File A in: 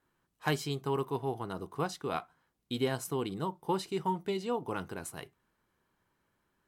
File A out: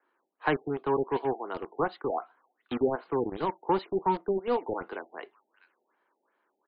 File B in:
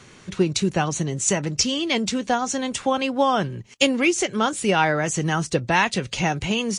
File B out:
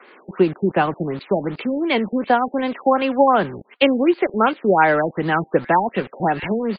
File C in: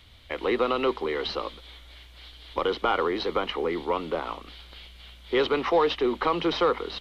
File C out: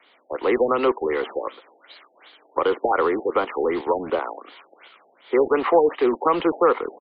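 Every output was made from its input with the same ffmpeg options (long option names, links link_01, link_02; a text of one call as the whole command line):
ffmpeg -i in.wav -filter_complex "[0:a]acrossover=split=200 2500:gain=0.112 1 0.224[link_01][link_02][link_03];[link_01][link_02][link_03]amix=inputs=3:normalize=0,acrossover=split=280|580|1700[link_04][link_05][link_06][link_07];[link_04]acrusher=bits=6:mix=0:aa=0.000001[link_08];[link_07]aecho=1:1:649:0.266[link_09];[link_08][link_05][link_06][link_09]amix=inputs=4:normalize=0,afftfilt=real='re*lt(b*sr/1024,850*pow(5000/850,0.5+0.5*sin(2*PI*2.7*pts/sr)))':imag='im*lt(b*sr/1024,850*pow(5000/850,0.5+0.5*sin(2*PI*2.7*pts/sr)))':win_size=1024:overlap=0.75,volume=6dB" out.wav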